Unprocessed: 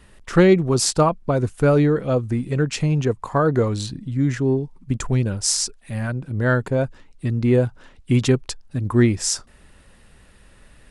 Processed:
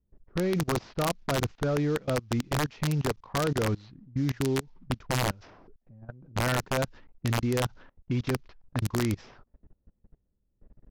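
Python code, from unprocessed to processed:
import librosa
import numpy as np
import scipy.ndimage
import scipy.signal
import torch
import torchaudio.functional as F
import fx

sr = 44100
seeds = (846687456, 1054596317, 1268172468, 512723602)

y = fx.cvsd(x, sr, bps=32000)
y = fx.level_steps(y, sr, step_db=24)
y = (np.mod(10.0 ** (17.5 / 20.0) * y + 1.0, 2.0) - 1.0) / 10.0 ** (17.5 / 20.0)
y = fx.env_lowpass(y, sr, base_hz=340.0, full_db=-24.5)
y = y * librosa.db_to_amplitude(-2.0)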